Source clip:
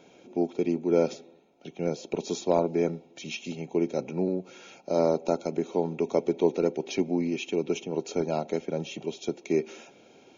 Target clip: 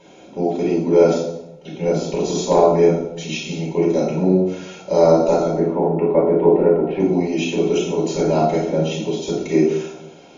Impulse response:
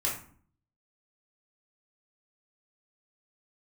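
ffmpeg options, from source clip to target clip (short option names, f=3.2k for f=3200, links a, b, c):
-filter_complex "[0:a]asplit=3[a][b][c];[a]afade=t=out:st=5.45:d=0.02[d];[b]lowpass=f=2k:w=0.5412,lowpass=f=2k:w=1.3066,afade=t=in:st=5.45:d=0.02,afade=t=out:st=6.99:d=0.02[e];[c]afade=t=in:st=6.99:d=0.02[f];[d][e][f]amix=inputs=3:normalize=0[g];[1:a]atrim=start_sample=2205,asetrate=24255,aresample=44100[h];[g][h]afir=irnorm=-1:irlink=0"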